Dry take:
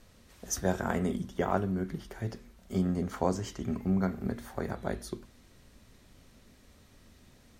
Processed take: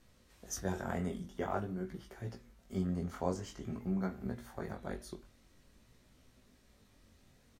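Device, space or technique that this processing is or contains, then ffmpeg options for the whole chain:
double-tracked vocal: -filter_complex "[0:a]asplit=2[s0][s1];[s1]adelay=24,volume=0.251[s2];[s0][s2]amix=inputs=2:normalize=0,flanger=delay=15.5:depth=7.1:speed=0.48,volume=0.631"

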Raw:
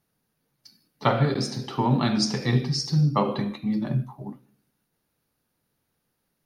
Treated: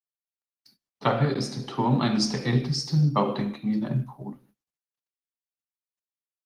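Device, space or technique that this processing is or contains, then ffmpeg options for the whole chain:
video call: -af "highpass=f=110:w=0.5412,highpass=f=110:w=1.3066,dynaudnorm=f=290:g=5:m=1.5,agate=range=0.0355:threshold=0.00224:ratio=16:detection=peak,volume=0.668" -ar 48000 -c:a libopus -b:a 20k

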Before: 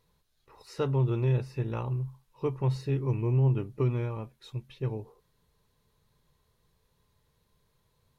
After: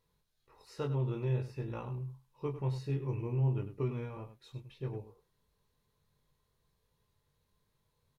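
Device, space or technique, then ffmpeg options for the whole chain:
slapback doubling: -filter_complex "[0:a]asplit=3[s0][s1][s2];[s1]adelay=21,volume=0.531[s3];[s2]adelay=100,volume=0.266[s4];[s0][s3][s4]amix=inputs=3:normalize=0,volume=0.422"

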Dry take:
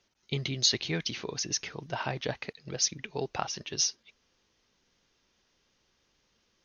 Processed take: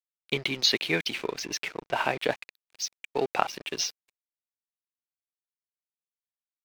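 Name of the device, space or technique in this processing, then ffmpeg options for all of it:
pocket radio on a weak battery: -filter_complex "[0:a]asettb=1/sr,asplit=3[s0][s1][s2];[s0]atrim=end=2.414[s3];[s1]atrim=start=2.41:end=3.15,asetpts=PTS-STARTPTS,afade=t=in:d=0.004:c=qsin,afade=t=out:st=0.736:d=0.004:c=qsin,aderivative[s4];[s2]atrim=start=3.146[s5];[s3][s4]acrossfade=d=0.004:c1=hsin:c2=qsin[s6];[s6][s5]acrossfade=d=0.004:c1=qsin:c2=hsin,highpass=270,lowpass=3500,aeval=exprs='sgn(val(0))*max(abs(val(0))-0.00355,0)':c=same,equalizer=f=2400:t=o:w=0.27:g=5,volume=2.51"

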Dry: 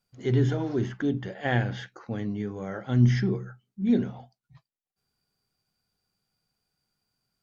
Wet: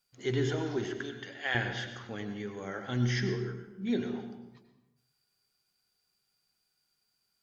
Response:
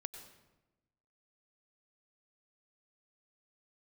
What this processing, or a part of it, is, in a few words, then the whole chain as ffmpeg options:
bathroom: -filter_complex "[0:a]tiltshelf=f=890:g=-7,asettb=1/sr,asplit=3[s0][s1][s2];[s0]atrim=end=0.934[s3];[s1]atrim=start=0.93:end=1.55,asetpts=PTS-STARTPTS,afade=t=in:d=0.004:c=qsin,afade=t=out:st=0.616:d=0.004:c=qsin,highpass=f=1100:p=1[s4];[s2]atrim=start=1.546[s5];[s3][s4]acrossfade=d=0.004:c1=hsin:c2=qsin[s6];[s6][s5]acrossfade=d=0.004:c1=qsin:c2=hsin[s7];[1:a]atrim=start_sample=2205[s8];[s7][s8]afir=irnorm=-1:irlink=0,equalizer=f=370:w=2.4:g=5"

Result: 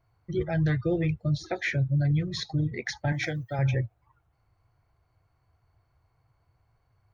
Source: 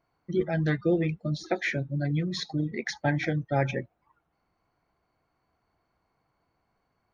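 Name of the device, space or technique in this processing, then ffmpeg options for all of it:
car stereo with a boomy subwoofer: -filter_complex "[0:a]lowshelf=f=150:t=q:w=3:g=10,alimiter=limit=0.119:level=0:latency=1:release=19,asettb=1/sr,asplit=3[s0][s1][s2];[s0]atrim=end=3.124[s3];[s1]atrim=start=3.12:end=3.59,asetpts=PTS-STARTPTS,afade=t=in:d=0.004:c=qsin,afade=t=out:st=0.466:d=0.004:c=qsin,aemphasis=mode=production:type=bsi[s4];[s2]atrim=start=3.586[s5];[s3][s4]acrossfade=d=0.004:c1=hsin:c2=qsin[s6];[s6][s5]acrossfade=d=0.004:c1=qsin:c2=hsin"

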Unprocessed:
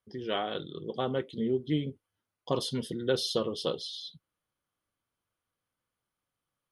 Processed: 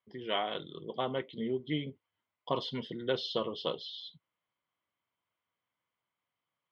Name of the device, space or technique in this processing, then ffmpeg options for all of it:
guitar cabinet: -af "highpass=100,equalizer=f=660:t=q:w=4:g=5,equalizer=f=1000:t=q:w=4:g=9,equalizer=f=2100:t=q:w=4:g=10,equalizer=f=3100:t=q:w=4:g=6,lowpass=f=4300:w=0.5412,lowpass=f=4300:w=1.3066,volume=0.562"

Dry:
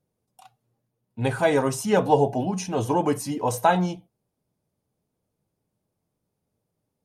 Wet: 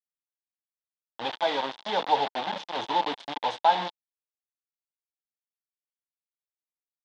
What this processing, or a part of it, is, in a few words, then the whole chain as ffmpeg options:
hand-held game console: -filter_complex "[0:a]asettb=1/sr,asplit=3[s0][s1][s2];[s0]atrim=end=2.464[s3];[s1]atrim=start=2.46:end=3.62,asetpts=PTS-STARTPTS,afade=t=in:d=0.004:c=qsin,afade=t=out:st=1.156:d=0.004:c=qsin,bass=f=250:g=3,treble=f=4000:g=4[s4];[s2]atrim=start=3.616[s5];[s3][s4]acrossfade=d=0.004:c1=hsin:c2=qsin[s6];[s6][s5]acrossfade=d=0.004:c1=qsin:c2=hsin,acrusher=bits=3:mix=0:aa=0.000001,highpass=400,equalizer=f=410:t=q:w=4:g=-6,equalizer=f=880:t=q:w=4:g=9,equalizer=f=1300:t=q:w=4:g=-4,equalizer=f=2400:t=q:w=4:g=-3,equalizer=f=3500:t=q:w=4:g=9,lowpass=f=4200:w=0.5412,lowpass=f=4200:w=1.3066,volume=0.473"

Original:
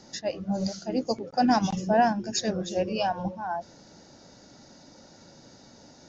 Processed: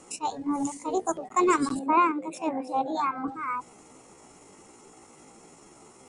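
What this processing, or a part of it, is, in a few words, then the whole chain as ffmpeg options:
chipmunk voice: -filter_complex "[0:a]asetrate=64194,aresample=44100,atempo=0.686977,asettb=1/sr,asplit=3[s0][s1][s2];[s0]atrim=end=1.794[s3];[s1]atrim=start=1.79:end=3.28,asetpts=PTS-STARTPTS,afade=t=in:d=0.004:c=qsin,afade=t=out:st=1.486:d=0.004:c=qsin,acrossover=split=160 3100:gain=0.0794 1 0.141[s4][s5][s6];[s4][s5][s6]amix=inputs=3:normalize=0[s7];[s2]atrim=start=3.276[s8];[s3][s7]acrossfade=d=0.004:c1=hsin:c2=qsin[s9];[s9][s8]acrossfade=d=0.004:c1=qsin:c2=hsin"

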